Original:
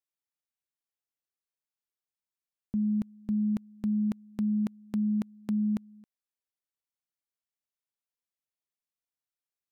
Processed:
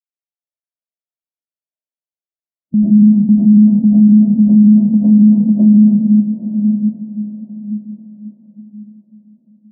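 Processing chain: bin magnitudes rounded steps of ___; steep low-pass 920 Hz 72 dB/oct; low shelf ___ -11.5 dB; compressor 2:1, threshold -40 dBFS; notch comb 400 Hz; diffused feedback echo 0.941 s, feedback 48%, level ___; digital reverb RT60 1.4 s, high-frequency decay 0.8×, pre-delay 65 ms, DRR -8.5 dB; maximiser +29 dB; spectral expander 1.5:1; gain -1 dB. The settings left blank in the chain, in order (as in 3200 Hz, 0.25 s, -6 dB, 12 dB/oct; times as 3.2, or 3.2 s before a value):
15 dB, 110 Hz, -8.5 dB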